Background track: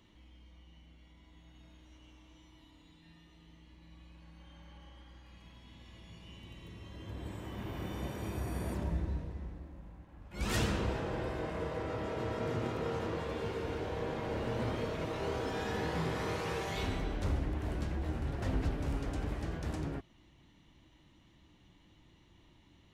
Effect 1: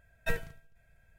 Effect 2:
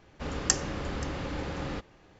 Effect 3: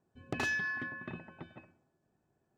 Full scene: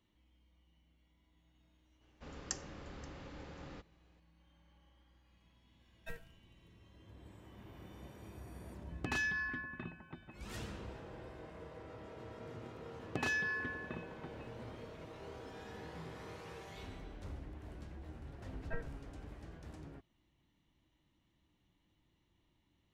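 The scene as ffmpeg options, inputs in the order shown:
-filter_complex "[1:a]asplit=2[a][b];[3:a]asplit=2[c][d];[0:a]volume=-13.5dB[e];[c]equalizer=f=540:t=o:w=0.72:g=-7.5[f];[b]lowpass=f=1.7k:w=0.5412,lowpass=f=1.7k:w=1.3066[g];[2:a]atrim=end=2.19,asetpts=PTS-STARTPTS,volume=-15.5dB,afade=t=in:d=0.004:c=hsin,afade=t=out:st=2.186:d=0.004:c=hsin,adelay=2010[h];[a]atrim=end=1.18,asetpts=PTS-STARTPTS,volume=-15.5dB,afade=t=in:d=0.004:c=hsin,afade=t=out:st=1.176:d=0.004:c=hsin,adelay=5800[i];[f]atrim=end=2.57,asetpts=PTS-STARTPTS,volume=-2dB,afade=t=in:d=0.004:c=hsin,afade=t=out:st=2.566:d=0.004:c=hsin,adelay=8720[j];[d]atrim=end=2.57,asetpts=PTS-STARTPTS,volume=-2dB,afade=t=in:d=0.004:c=hsin,afade=t=out:st=2.566:d=0.004:c=hsin,adelay=12830[k];[g]atrim=end=1.18,asetpts=PTS-STARTPTS,volume=-9dB,afade=t=in:d=0.004:c=hsin,afade=t=out:st=1.176:d=0.004:c=hsin,adelay=813204S[l];[e][h][i][j][k][l]amix=inputs=6:normalize=0"

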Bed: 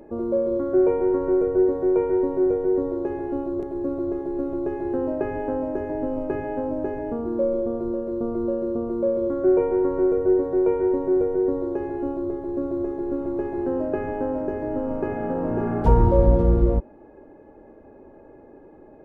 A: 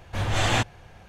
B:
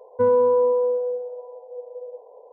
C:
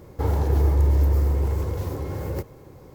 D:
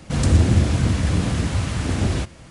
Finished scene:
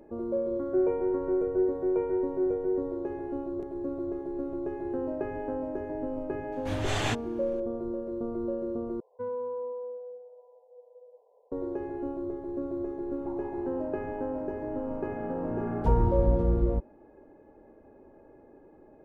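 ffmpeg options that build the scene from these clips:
-filter_complex "[0:a]volume=-7dB[a];[3:a]asuperpass=centerf=830:order=4:qfactor=2.6[b];[a]asplit=2[c][d];[c]atrim=end=9.004[e];[2:a]atrim=end=2.52,asetpts=PTS-STARTPTS,volume=-16.5dB[f];[d]atrim=start=11.516[g];[1:a]atrim=end=1.08,asetpts=PTS-STARTPTS,volume=-7dB,afade=t=in:d=0.004:c=hsin,afade=t=out:st=1.076:d=0.004:c=hsin,adelay=6520[h];[b]atrim=end=2.94,asetpts=PTS-STARTPTS,volume=-11.5dB,afade=t=in:d=0.004:c=hsin,afade=t=out:st=2.936:d=0.004:c=hsin,adelay=13060[i];[e][f]acrossfade=d=0.004:c1=hsin:c2=hsin[j];[j][g]acrossfade=d=0.004:c1=hsin:c2=hsin[k];[k][h][i]amix=inputs=3:normalize=0"

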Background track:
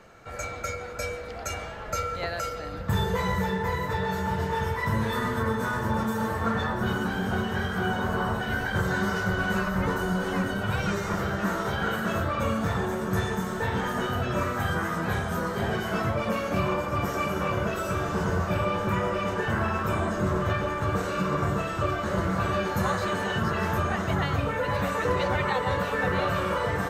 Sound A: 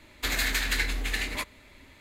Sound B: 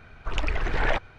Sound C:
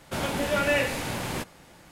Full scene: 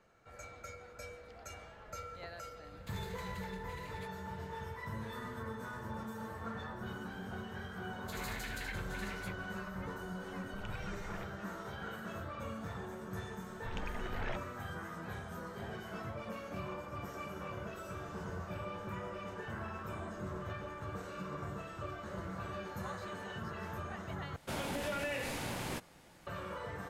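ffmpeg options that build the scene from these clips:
-filter_complex "[1:a]asplit=2[a][b];[2:a]asplit=2[c][d];[0:a]volume=-16dB[e];[a]acompressor=threshold=-36dB:ratio=6:attack=3.2:release=140:knee=1:detection=peak[f];[b]acrossover=split=680|3700[g][h][i];[h]adelay=40[j];[g]adelay=80[k];[k][j][i]amix=inputs=3:normalize=0[l];[c]acompressor=threshold=-26dB:ratio=6:attack=3.2:release=140:knee=1:detection=peak[m];[3:a]acompressor=threshold=-25dB:ratio=6:attack=3.2:release=140:knee=1:detection=peak[n];[e]asplit=2[o][p];[o]atrim=end=24.364[q];[n]atrim=end=1.91,asetpts=PTS-STARTPTS,volume=-8dB[r];[p]atrim=start=26.266[s];[f]atrim=end=2,asetpts=PTS-STARTPTS,volume=-14dB,afade=t=in:d=0.004:c=hsin,afade=t=out:st=1.996:d=0.004:c=hsin,adelay=2640[t];[l]atrim=end=2,asetpts=PTS-STARTPTS,volume=-15.5dB,afade=t=in:d=0.004:c=hsin,afade=t=out:st=1.996:d=0.004:c=hsin,adelay=7850[u];[m]atrim=end=1.18,asetpts=PTS-STARTPTS,volume=-16dB,afade=t=in:d=0.004:c=hsin,afade=t=out:st=1.176:d=0.004:c=hsin,adelay=10270[v];[d]atrim=end=1.18,asetpts=PTS-STARTPTS,volume=-16dB,afade=t=in:d=0.004:c=hsin,afade=t=out:st=1.176:d=0.004:c=hsin,adelay=13390[w];[q][r]acrossfade=d=0.004:c1=hsin:c2=hsin[x];[x][s]acrossfade=d=0.004:c1=hsin:c2=hsin[y];[y][t][u][v][w]amix=inputs=5:normalize=0"

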